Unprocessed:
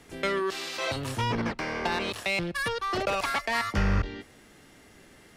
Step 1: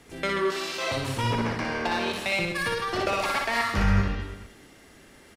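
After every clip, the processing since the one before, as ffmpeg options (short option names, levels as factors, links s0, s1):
-af "aecho=1:1:60|132|218.4|322.1|446.5:0.631|0.398|0.251|0.158|0.1"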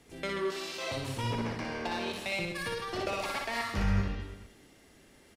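-af "equalizer=f=1400:w=1.2:g=-4,volume=0.501"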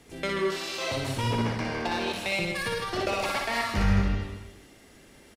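-af "aecho=1:1:157:0.335,volume=1.78"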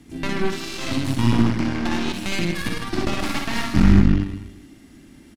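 -af "aeval=exprs='0.237*(cos(1*acos(clip(val(0)/0.237,-1,1)))-cos(1*PI/2))+0.0596*(cos(6*acos(clip(val(0)/0.237,-1,1)))-cos(6*PI/2))':c=same,lowshelf=f=370:t=q:w=3:g=7"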